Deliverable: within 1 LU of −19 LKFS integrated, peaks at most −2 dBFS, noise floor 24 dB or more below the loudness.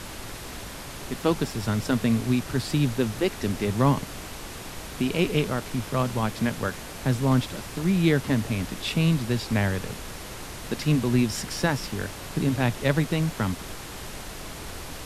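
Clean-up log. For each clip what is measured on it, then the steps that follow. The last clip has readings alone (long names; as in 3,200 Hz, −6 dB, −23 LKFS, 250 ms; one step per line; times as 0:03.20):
background noise floor −39 dBFS; target noise floor −50 dBFS; integrated loudness −26.0 LKFS; sample peak −8.0 dBFS; target loudness −19.0 LKFS
→ noise reduction from a noise print 11 dB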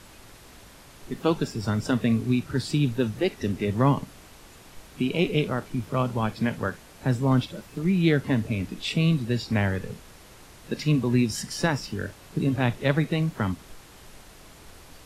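background noise floor −50 dBFS; integrated loudness −26.0 LKFS; sample peak −8.0 dBFS; target loudness −19.0 LKFS
→ level +7 dB
brickwall limiter −2 dBFS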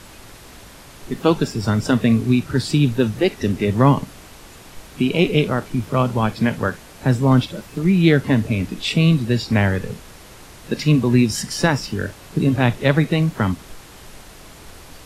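integrated loudness −19.0 LKFS; sample peak −2.0 dBFS; background noise floor −43 dBFS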